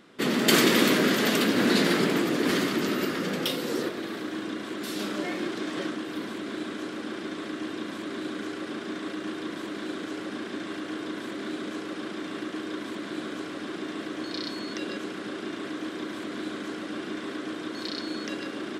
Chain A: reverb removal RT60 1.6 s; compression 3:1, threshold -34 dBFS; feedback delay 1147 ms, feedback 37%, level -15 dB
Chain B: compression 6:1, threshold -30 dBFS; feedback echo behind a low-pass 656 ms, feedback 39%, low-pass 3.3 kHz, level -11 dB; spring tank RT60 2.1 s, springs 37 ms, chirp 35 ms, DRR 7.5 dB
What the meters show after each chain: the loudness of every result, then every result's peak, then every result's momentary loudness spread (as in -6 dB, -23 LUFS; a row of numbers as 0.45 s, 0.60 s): -37.5 LUFS, -34.0 LUFS; -17.5 dBFS, -16.5 dBFS; 5 LU, 4 LU